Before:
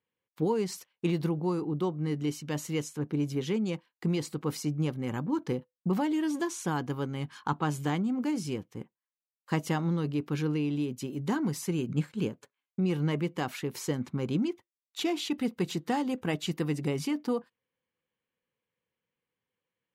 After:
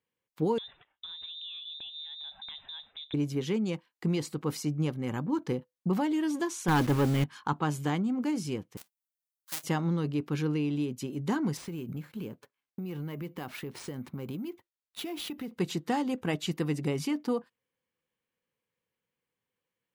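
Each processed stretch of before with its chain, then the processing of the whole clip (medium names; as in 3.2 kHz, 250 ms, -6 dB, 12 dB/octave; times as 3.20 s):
0.58–3.14 s: compression 16:1, threshold -39 dBFS + frequency inversion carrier 3.8 kHz
6.68–7.24 s: send-on-delta sampling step -45.5 dBFS + band-stop 700 Hz, Q 6.7 + waveshaping leveller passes 3
8.77–9.64 s: square wave that keeps the level + differentiator
11.57–15.52 s: median filter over 5 samples + careless resampling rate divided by 3×, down none, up hold + compression 10:1, threshold -33 dBFS
whole clip: none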